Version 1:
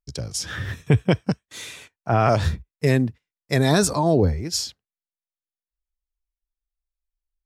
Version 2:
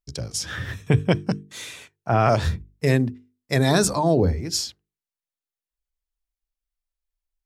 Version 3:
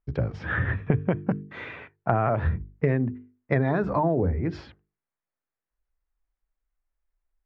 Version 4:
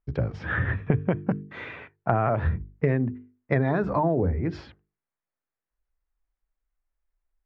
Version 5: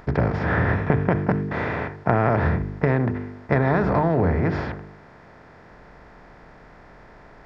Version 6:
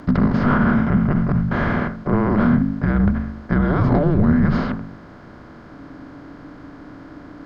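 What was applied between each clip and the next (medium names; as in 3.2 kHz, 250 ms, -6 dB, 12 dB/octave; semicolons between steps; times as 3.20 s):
hum notches 50/100/150/200/250/300/350/400/450 Hz
low-pass 2 kHz 24 dB/octave; compression 10:1, threshold -26 dBFS, peak gain reduction 14 dB; trim +6.5 dB
no audible change
spectral levelling over time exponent 0.4; trim -1 dB
bass shelf 65 Hz +8 dB; peak limiter -12.5 dBFS, peak gain reduction 11.5 dB; frequency shift -320 Hz; trim +5.5 dB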